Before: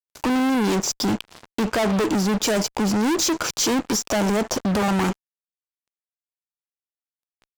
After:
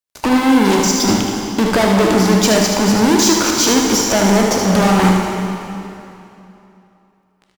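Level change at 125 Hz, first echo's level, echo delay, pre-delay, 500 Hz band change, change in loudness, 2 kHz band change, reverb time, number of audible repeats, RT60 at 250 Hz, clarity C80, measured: +9.0 dB, −5.5 dB, 76 ms, 24 ms, +9.0 dB, +8.5 dB, +8.5 dB, 2.9 s, 1, 2.8 s, 3.0 dB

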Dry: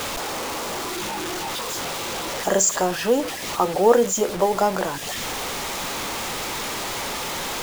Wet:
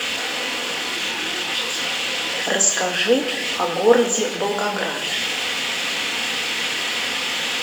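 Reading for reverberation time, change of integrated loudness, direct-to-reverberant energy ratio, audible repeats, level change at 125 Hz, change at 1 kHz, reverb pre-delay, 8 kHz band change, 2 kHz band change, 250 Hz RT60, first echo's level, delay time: 1.6 s, +3.0 dB, 3.0 dB, no echo audible, −3.5 dB, −1.5 dB, 3 ms, +2.0 dB, +8.0 dB, 2.1 s, no echo audible, no echo audible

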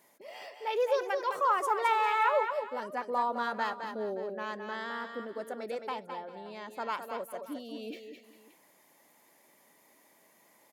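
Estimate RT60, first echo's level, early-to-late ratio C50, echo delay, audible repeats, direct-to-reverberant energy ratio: no reverb audible, −7.5 dB, no reverb audible, 212 ms, 3, no reverb audible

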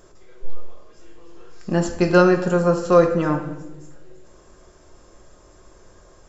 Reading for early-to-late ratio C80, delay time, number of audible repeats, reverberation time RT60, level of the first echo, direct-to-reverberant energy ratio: 10.5 dB, no echo audible, no echo audible, 1.1 s, no echo audible, 2.0 dB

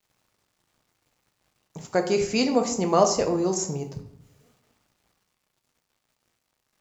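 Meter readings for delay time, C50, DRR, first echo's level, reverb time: no echo audible, 9.5 dB, 4.5 dB, no echo audible, 0.70 s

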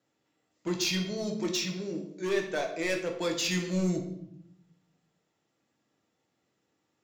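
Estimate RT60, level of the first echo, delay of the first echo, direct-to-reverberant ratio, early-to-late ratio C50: 0.75 s, no echo audible, no echo audible, 2.0 dB, 7.5 dB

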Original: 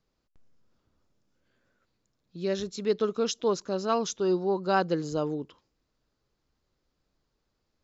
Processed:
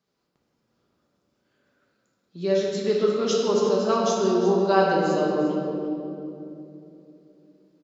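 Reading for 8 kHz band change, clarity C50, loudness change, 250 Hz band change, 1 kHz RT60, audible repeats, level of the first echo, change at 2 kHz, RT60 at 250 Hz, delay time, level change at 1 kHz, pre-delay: can't be measured, −1.0 dB, +6.0 dB, +7.0 dB, 2.5 s, 1, −12.5 dB, +5.5 dB, 4.2 s, 352 ms, +6.0 dB, 5 ms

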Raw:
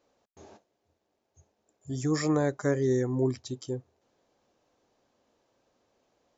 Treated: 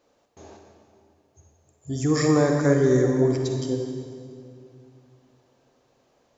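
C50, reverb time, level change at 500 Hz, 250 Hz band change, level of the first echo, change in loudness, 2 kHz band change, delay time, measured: 2.5 dB, 2.4 s, +7.5 dB, +7.0 dB, no echo audible, +7.0 dB, +7.0 dB, no echo audible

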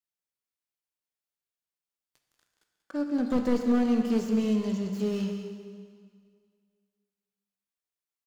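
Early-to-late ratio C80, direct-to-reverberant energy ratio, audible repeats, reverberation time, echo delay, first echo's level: 5.5 dB, 3.5 dB, 1, 2.0 s, 187 ms, −10.5 dB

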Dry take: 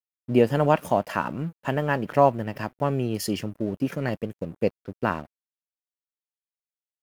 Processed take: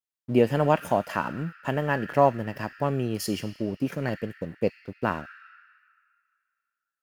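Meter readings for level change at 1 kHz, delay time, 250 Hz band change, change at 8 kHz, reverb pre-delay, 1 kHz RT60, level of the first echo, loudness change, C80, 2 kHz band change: −1.5 dB, no echo audible, −1.5 dB, −1.0 dB, 3 ms, 2.2 s, no echo audible, −1.5 dB, 11.0 dB, −0.5 dB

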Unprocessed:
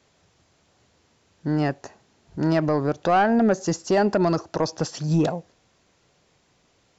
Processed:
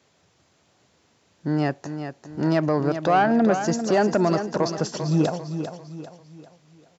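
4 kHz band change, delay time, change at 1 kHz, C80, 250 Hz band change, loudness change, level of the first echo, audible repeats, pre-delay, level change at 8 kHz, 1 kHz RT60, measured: +0.5 dB, 396 ms, +0.5 dB, no reverb audible, +0.5 dB, −0.5 dB, −9.0 dB, 4, no reverb audible, can't be measured, no reverb audible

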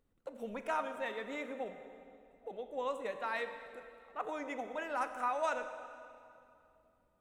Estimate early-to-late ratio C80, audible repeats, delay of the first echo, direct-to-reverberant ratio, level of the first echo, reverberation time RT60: 9.5 dB, no echo audible, no echo audible, 8.0 dB, no echo audible, 2.6 s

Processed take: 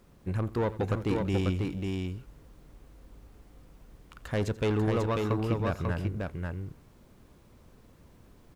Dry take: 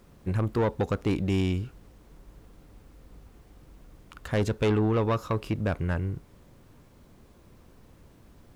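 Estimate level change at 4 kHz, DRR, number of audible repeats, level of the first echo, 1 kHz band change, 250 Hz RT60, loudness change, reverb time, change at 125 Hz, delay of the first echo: −2.0 dB, no reverb audible, 3, −18.0 dB, −2.0 dB, no reverb audible, −2.5 dB, no reverb audible, −1.5 dB, 86 ms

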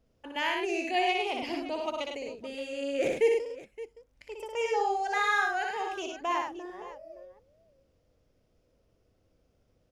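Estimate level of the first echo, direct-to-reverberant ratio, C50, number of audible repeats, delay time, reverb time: −4.0 dB, no reverb audible, no reverb audible, 3, 61 ms, no reverb audible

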